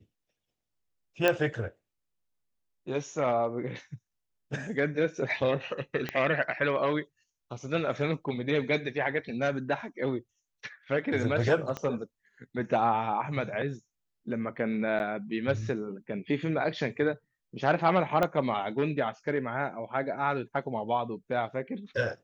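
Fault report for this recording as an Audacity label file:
1.280000	1.280000	click −10 dBFS
6.090000	6.090000	click −17 dBFS
11.770000	11.770000	click −20 dBFS
14.990000	15.000000	drop-out 9.6 ms
18.230000	18.230000	click −13 dBFS

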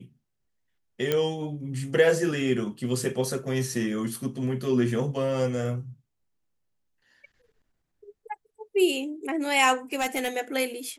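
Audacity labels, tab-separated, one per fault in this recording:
1.120000	1.120000	click −11 dBFS
9.930000	10.280000	clipping −21.5 dBFS

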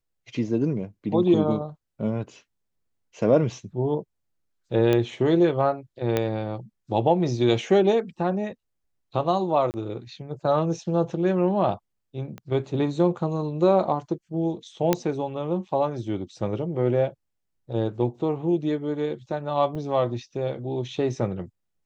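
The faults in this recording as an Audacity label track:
4.930000	4.930000	click −11 dBFS
6.170000	6.170000	click −10 dBFS
9.710000	9.740000	drop-out 29 ms
12.380000	12.380000	click −24 dBFS
14.930000	14.930000	click −6 dBFS
19.750000	19.750000	drop-out 4.8 ms

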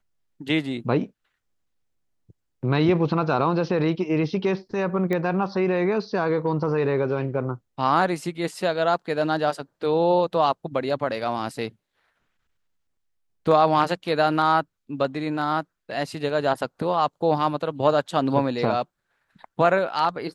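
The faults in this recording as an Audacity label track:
5.130000	5.130000	click −15 dBFS

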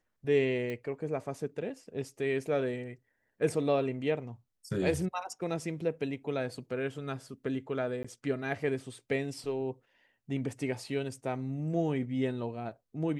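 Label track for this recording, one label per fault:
0.700000	0.700000	click −25 dBFS
8.030000	8.040000	drop-out 15 ms

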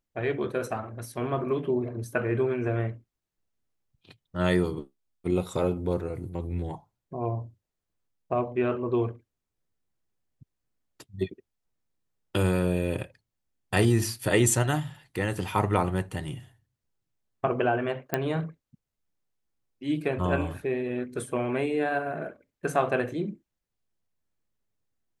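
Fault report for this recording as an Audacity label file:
18.140000	18.140000	click −11 dBFS

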